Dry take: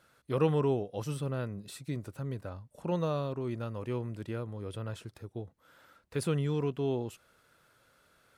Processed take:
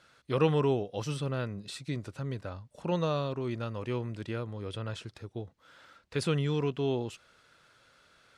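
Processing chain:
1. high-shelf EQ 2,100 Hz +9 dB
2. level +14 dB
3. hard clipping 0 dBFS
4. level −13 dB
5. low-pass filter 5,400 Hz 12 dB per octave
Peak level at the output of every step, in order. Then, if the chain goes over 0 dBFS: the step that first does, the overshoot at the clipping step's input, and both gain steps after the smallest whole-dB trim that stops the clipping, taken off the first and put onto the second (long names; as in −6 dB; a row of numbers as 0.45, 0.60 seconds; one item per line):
−16.0, −2.0, −2.0, −15.0, −15.0 dBFS
no step passes full scale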